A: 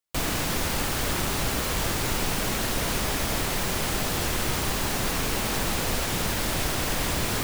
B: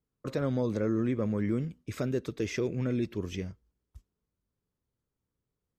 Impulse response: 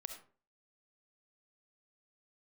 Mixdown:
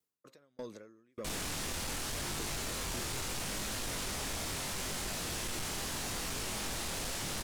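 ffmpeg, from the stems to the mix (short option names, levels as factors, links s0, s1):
-filter_complex "[0:a]flanger=delay=19.5:depth=6.3:speed=0.78,lowpass=9800,adelay=1100,volume=0.398,asplit=2[s0][s1];[s1]volume=0.398[s2];[1:a]highpass=f=560:p=1,acompressor=threshold=0.0126:ratio=3,aeval=exprs='val(0)*pow(10,-39*if(lt(mod(1.7*n/s,1),2*abs(1.7)/1000),1-mod(1.7*n/s,1)/(2*abs(1.7)/1000),(mod(1.7*n/s,1)-2*abs(1.7)/1000)/(1-2*abs(1.7)/1000))/20)':c=same,volume=1.41[s3];[2:a]atrim=start_sample=2205[s4];[s2][s4]afir=irnorm=-1:irlink=0[s5];[s0][s3][s5]amix=inputs=3:normalize=0,highshelf=f=4400:g=9,asoftclip=type=tanh:threshold=0.0224"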